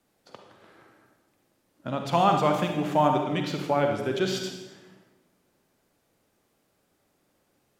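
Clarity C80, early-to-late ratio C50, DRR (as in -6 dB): 7.0 dB, 4.5 dB, 3.5 dB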